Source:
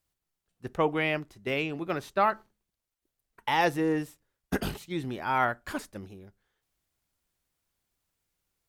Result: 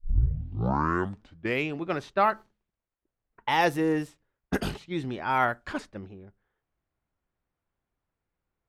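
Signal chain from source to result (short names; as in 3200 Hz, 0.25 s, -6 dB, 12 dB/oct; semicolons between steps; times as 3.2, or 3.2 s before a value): tape start at the beginning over 1.69 s; low-pass opened by the level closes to 1600 Hz, open at -24.5 dBFS; gain +1.5 dB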